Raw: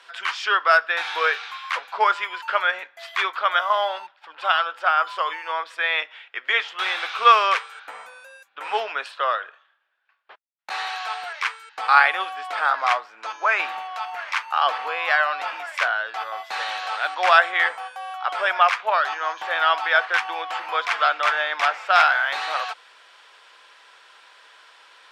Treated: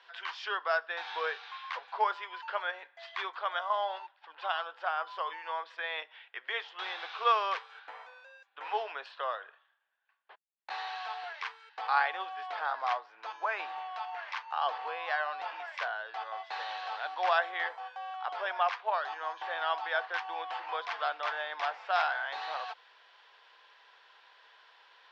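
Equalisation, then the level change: dynamic bell 2.1 kHz, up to -6 dB, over -31 dBFS, Q 0.75; cabinet simulation 450–5300 Hz, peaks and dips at 580 Hz -4 dB, 1.3 kHz -7 dB, 2.3 kHz -4 dB; treble shelf 3.3 kHz -8 dB; -4.5 dB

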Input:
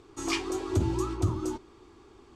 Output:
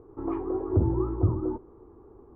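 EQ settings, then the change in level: low-pass 1.1 kHz 24 dB/octave; bass shelf 220 Hz +4.5 dB; peaking EQ 480 Hz +7.5 dB 0.41 oct; 0.0 dB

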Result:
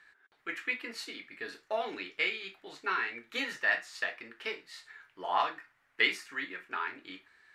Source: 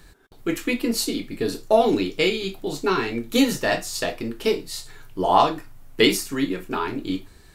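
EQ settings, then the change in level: band-pass filter 1.8 kHz, Q 2.6; 0.0 dB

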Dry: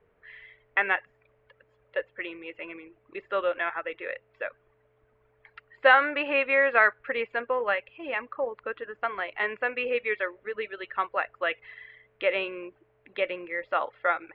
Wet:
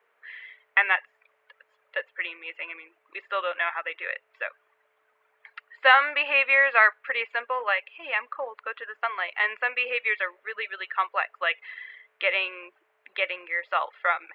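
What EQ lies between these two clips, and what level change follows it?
high-pass 960 Hz 12 dB/octave; dynamic bell 1.5 kHz, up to -6 dB, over -41 dBFS, Q 4.6; +6.0 dB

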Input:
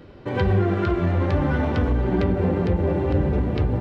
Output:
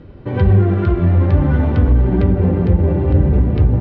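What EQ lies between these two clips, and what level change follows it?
distance through air 120 m; bass shelf 240 Hz +11 dB; 0.0 dB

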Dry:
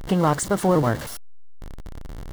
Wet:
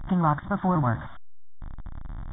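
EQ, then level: static phaser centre 1.1 kHz, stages 4; dynamic bell 2.5 kHz, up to -4 dB, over -44 dBFS, Q 1.7; brick-wall FIR low-pass 3.7 kHz; 0.0 dB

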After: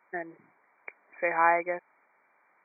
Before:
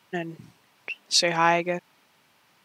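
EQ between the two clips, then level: high-pass 460 Hz 12 dB/octave; brick-wall FIR low-pass 2.4 kHz; -1.5 dB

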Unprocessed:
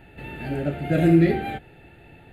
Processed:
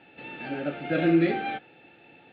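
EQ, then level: dynamic bell 1.4 kHz, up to +5 dB, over -43 dBFS, Q 1.4; cabinet simulation 390–3500 Hz, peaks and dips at 400 Hz -9 dB, 650 Hz -9 dB, 950 Hz -6 dB, 1.4 kHz -6 dB, 1.9 kHz -10 dB, 2.8 kHz -3 dB; +4.5 dB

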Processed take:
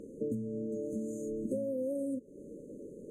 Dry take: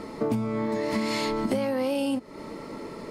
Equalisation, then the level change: brick-wall FIR band-stop 590–6200 Hz; bass shelf 300 Hz -5.5 dB; treble shelf 8.7 kHz -12 dB; -5.5 dB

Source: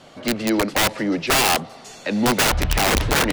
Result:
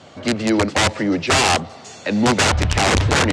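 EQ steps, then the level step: high-pass 67 Hz; Chebyshev low-pass 7.8 kHz, order 3; peaking EQ 90 Hz +13 dB 0.41 oct; +2.5 dB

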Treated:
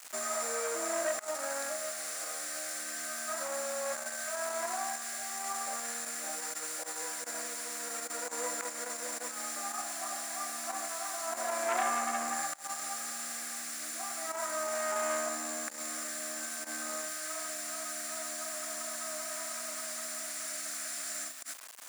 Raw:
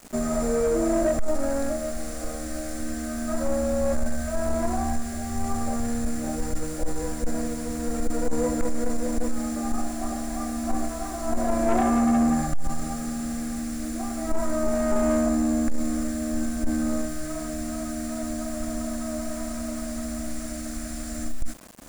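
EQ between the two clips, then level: high-pass 1.2 kHz 12 dB/octave; +2.0 dB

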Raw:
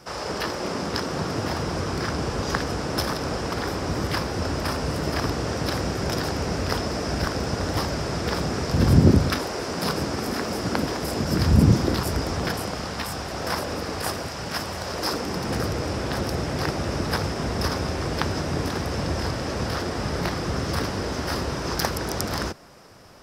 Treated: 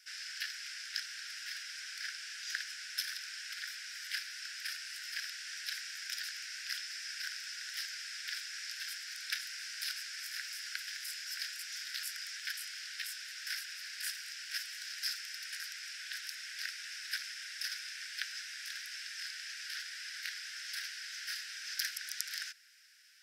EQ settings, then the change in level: steep high-pass 1.5 kHz 96 dB/octave; -7.0 dB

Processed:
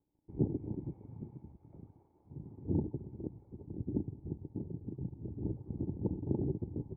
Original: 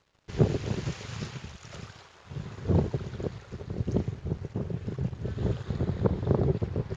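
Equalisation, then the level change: bass shelf 240 Hz +6.5 dB; dynamic bell 1.7 kHz, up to -3 dB, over -47 dBFS, Q 0.99; cascade formant filter u; -1.5 dB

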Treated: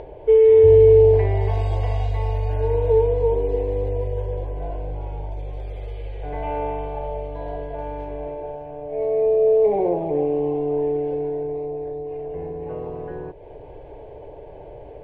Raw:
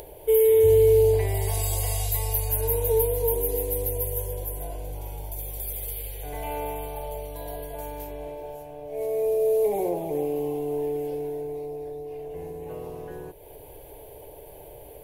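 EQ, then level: low-pass 1.9 kHz 12 dB/octave; distance through air 80 m; +6.0 dB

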